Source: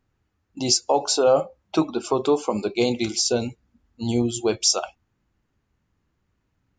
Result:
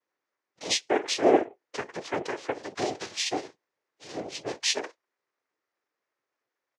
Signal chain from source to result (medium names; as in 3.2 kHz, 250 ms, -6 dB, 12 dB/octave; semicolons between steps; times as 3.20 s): rippled Chebyshev high-pass 370 Hz, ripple 3 dB; comb 3.5 ms; noise-vocoded speech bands 4; formant shift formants -4 st; trim -5 dB; Vorbis 128 kbps 32 kHz